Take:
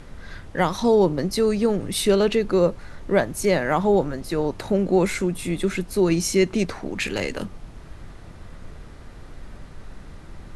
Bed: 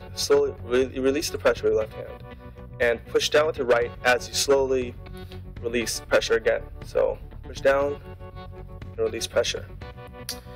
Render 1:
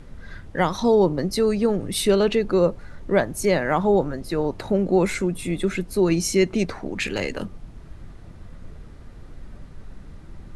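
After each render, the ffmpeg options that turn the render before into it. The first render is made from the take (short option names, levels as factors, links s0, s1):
-af "afftdn=nr=6:nf=-42"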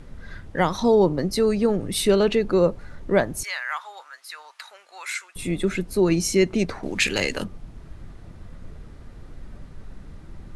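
-filter_complex "[0:a]asettb=1/sr,asplit=3[s0][s1][s2];[s0]atrim=end=3.434[s3];[s1]atrim=start=3.43:end=5.36,asetpts=PTS-STARTPTS,afade=t=in:d=0.004:c=qsin,afade=t=out:st=1.926:d=0.004:c=qsin,highpass=f=1200:w=0.5412,highpass=f=1200:w=1.3066[s4];[s2]atrim=start=5.356[s5];[s3][s4]acrossfade=d=0.004:c1=hsin:c2=qsin[s6];[s6][s5]acrossfade=d=0.004:c1=qsin:c2=hsin,asettb=1/sr,asplit=3[s7][s8][s9];[s7]atrim=end=6.834[s10];[s8]atrim=start=6.83:end=7.44,asetpts=PTS-STARTPTS,afade=t=in:d=0.004:c=qsin,afade=t=out:st=0.606:d=0.004:c=qsin,highshelf=f=2100:g=9.5[s11];[s9]atrim=start=7.436[s12];[s10][s11]acrossfade=d=0.004:c1=hsin:c2=qsin[s13];[s13][s12]acrossfade=d=0.004:c1=qsin:c2=hsin"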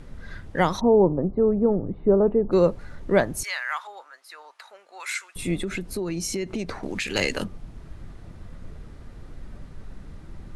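-filter_complex "[0:a]asplit=3[s0][s1][s2];[s0]afade=t=out:st=0.79:d=0.02[s3];[s1]lowpass=f=1000:w=0.5412,lowpass=f=1000:w=1.3066,afade=t=in:st=0.79:d=0.02,afade=t=out:st=2.51:d=0.02[s4];[s2]afade=t=in:st=2.51:d=0.02[s5];[s3][s4][s5]amix=inputs=3:normalize=0,asettb=1/sr,asplit=3[s6][s7][s8];[s6]atrim=end=3.874[s9];[s7]atrim=start=3.87:end=5,asetpts=PTS-STARTPTS,afade=t=in:d=0.004:c=qsin,afade=t=out:st=1.126:d=0.004:c=qsin,tiltshelf=f=750:g=8[s10];[s8]atrim=start=4.996[s11];[s9][s10]acrossfade=d=0.004:c1=hsin:c2=qsin[s12];[s12][s11]acrossfade=d=0.004:c1=qsin:c2=hsin,asettb=1/sr,asplit=3[s13][s14][s15];[s13]atrim=end=5.624[s16];[s14]atrim=start=5.62:end=7.15,asetpts=PTS-STARTPTS,afade=t=in:d=0.004:c=qsin,afade=t=out:st=1.526:d=0.004:c=qsin,acompressor=threshold=0.0562:ratio=6:attack=3.2:release=140:knee=1:detection=peak[s17];[s15]atrim=start=7.146[s18];[s16][s17]acrossfade=d=0.004:c1=hsin:c2=qsin[s19];[s19][s18]acrossfade=d=0.004:c1=qsin:c2=hsin"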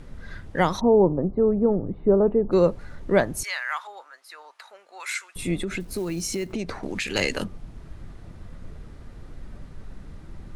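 -filter_complex "[0:a]asettb=1/sr,asplit=3[s0][s1][s2];[s0]atrim=end=5.804[s3];[s1]atrim=start=5.8:end=6.53,asetpts=PTS-STARTPTS,afade=t=in:d=0.004:c=qsin,afade=t=out:st=0.726:d=0.004:c=qsin,acrusher=bits=6:mode=log:mix=0:aa=0.000001[s4];[s2]atrim=start=6.526[s5];[s3][s4]acrossfade=d=0.004:c1=hsin:c2=qsin[s6];[s6][s5]acrossfade=d=0.004:c1=qsin:c2=hsin"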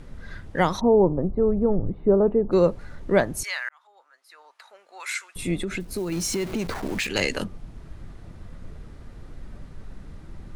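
-filter_complex "[0:a]asettb=1/sr,asplit=3[s0][s1][s2];[s0]atrim=end=0.824[s3];[s1]atrim=start=0.82:end=1.9,asetpts=PTS-STARTPTS,afade=t=in:d=0.004:c=qsin,afade=t=out:st=1.076:d=0.004:c=qsin,asubboost=boost=8:cutoff=130[s4];[s2]atrim=start=1.896[s5];[s3][s4]acrossfade=d=0.004:c1=hsin:c2=qsin[s6];[s6][s5]acrossfade=d=0.004:c1=qsin:c2=hsin,asettb=1/sr,asplit=3[s7][s8][s9];[s7]atrim=end=6.124[s10];[s8]atrim=start=6.12:end=7.07,asetpts=PTS-STARTPTS,afade=t=in:d=0.004:c=qsin,afade=t=out:st=0.946:d=0.004:c=qsin,aeval=exprs='val(0)+0.5*0.0237*sgn(val(0))':c=same[s11];[s9]atrim=start=7.066[s12];[s10][s11]acrossfade=d=0.004:c1=hsin:c2=qsin[s13];[s13][s12]acrossfade=d=0.004:c1=qsin:c2=hsin,asplit=2[s14][s15];[s14]atrim=end=3.69,asetpts=PTS-STARTPTS,afade=t=out:st=3.686:d=0.004:c=hsin[s16];[s15]atrim=start=3.69,asetpts=PTS-STARTPTS,afade=t=in:d=1.39[s17];[s16][s17]concat=n=2:v=0:a=1"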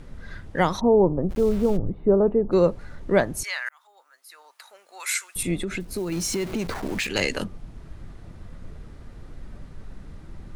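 -filter_complex "[0:a]asplit=3[s0][s1][s2];[s0]afade=t=out:st=1.29:d=0.02[s3];[s1]aeval=exprs='val(0)*gte(abs(val(0)),0.0188)':c=same,afade=t=in:st=1.29:d=0.02,afade=t=out:st=1.76:d=0.02[s4];[s2]afade=t=in:st=1.76:d=0.02[s5];[s3][s4][s5]amix=inputs=3:normalize=0,asettb=1/sr,asplit=3[s6][s7][s8];[s6]atrim=end=3.664[s9];[s7]atrim=start=3.66:end=5.43,asetpts=PTS-STARTPTS,afade=t=in:d=0.004:c=qsin,afade=t=out:st=1.766:d=0.004:c=qsin,aemphasis=mode=production:type=50fm[s10];[s8]atrim=start=5.426[s11];[s9][s10]acrossfade=d=0.004:c1=hsin:c2=qsin[s12];[s12][s11]acrossfade=d=0.004:c1=qsin:c2=hsin"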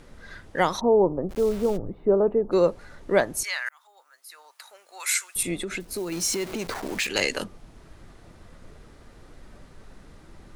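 -af "bass=f=250:g=-9,treble=f=4000:g=3"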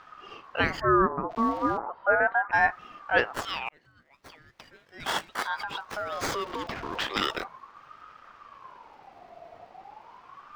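-filter_complex "[0:a]acrossover=split=5000[s0][s1];[s1]acrusher=samples=27:mix=1:aa=0.000001:lfo=1:lforange=16.2:lforate=0.62[s2];[s0][s2]amix=inputs=2:normalize=0,aeval=exprs='val(0)*sin(2*PI*970*n/s+970*0.3/0.37*sin(2*PI*0.37*n/s))':c=same"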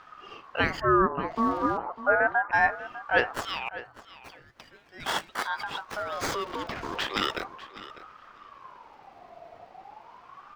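-filter_complex "[0:a]asplit=2[s0][s1];[s1]adelay=599,lowpass=f=5000:p=1,volume=0.168,asplit=2[s2][s3];[s3]adelay=599,lowpass=f=5000:p=1,volume=0.15[s4];[s0][s2][s4]amix=inputs=3:normalize=0"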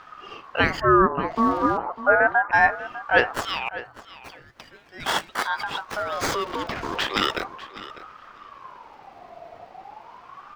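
-af "volume=1.78"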